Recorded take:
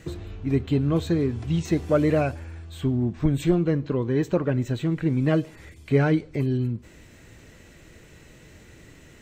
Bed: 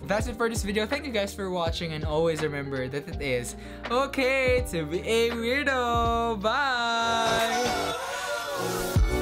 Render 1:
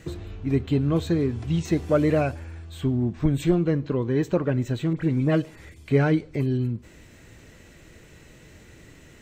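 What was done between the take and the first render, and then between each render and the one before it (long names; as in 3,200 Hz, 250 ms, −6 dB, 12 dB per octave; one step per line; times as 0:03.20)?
0:04.93–0:05.42: all-pass dispersion highs, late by 44 ms, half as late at 2,300 Hz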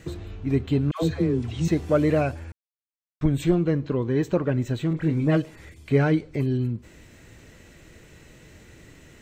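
0:00.91–0:01.68: all-pass dispersion lows, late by 116 ms, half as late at 740 Hz
0:02.52–0:03.21: silence
0:04.88–0:05.37: double-tracking delay 26 ms −9 dB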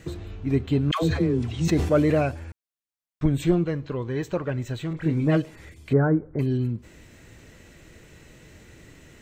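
0:00.87–0:02.26: level that may fall only so fast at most 60 dB per second
0:03.64–0:05.06: parametric band 250 Hz −7 dB 1.9 octaves
0:05.93–0:06.39: Butterworth low-pass 1,600 Hz 48 dB per octave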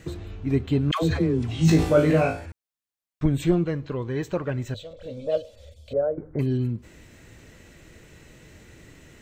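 0:01.47–0:02.46: flutter between parallel walls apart 3.2 metres, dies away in 0.36 s
0:04.74–0:06.18: drawn EQ curve 100 Hz 0 dB, 150 Hz −27 dB, 220 Hz −8 dB, 350 Hz −25 dB, 540 Hz +12 dB, 870 Hz −15 dB, 1,300 Hz −15 dB, 2,000 Hz −20 dB, 3,400 Hz +2 dB, 9,000 Hz −7 dB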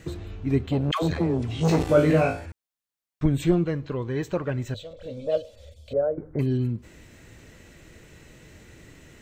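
0:00.66–0:01.89: saturating transformer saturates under 510 Hz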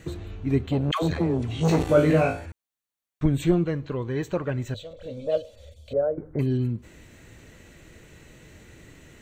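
notch filter 5,100 Hz, Q 9.6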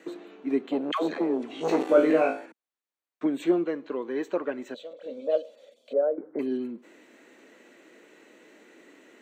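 Butterworth high-pass 250 Hz 36 dB per octave
high-shelf EQ 3,700 Hz −11 dB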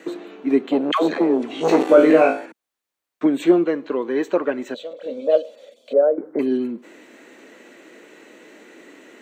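level +8.5 dB
brickwall limiter −2 dBFS, peak gain reduction 2.5 dB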